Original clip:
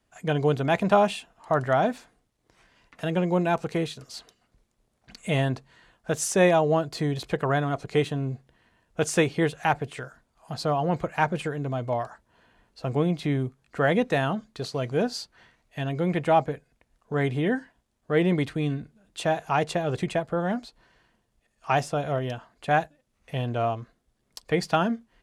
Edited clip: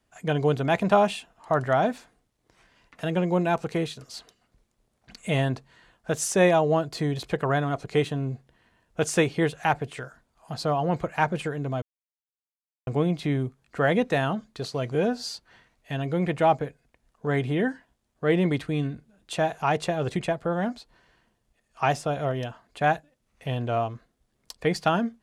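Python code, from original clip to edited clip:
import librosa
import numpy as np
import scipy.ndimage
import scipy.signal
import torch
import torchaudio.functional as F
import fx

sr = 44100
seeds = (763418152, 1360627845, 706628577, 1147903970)

y = fx.edit(x, sr, fx.silence(start_s=11.82, length_s=1.05),
    fx.stretch_span(start_s=14.95, length_s=0.26, factor=1.5), tone=tone)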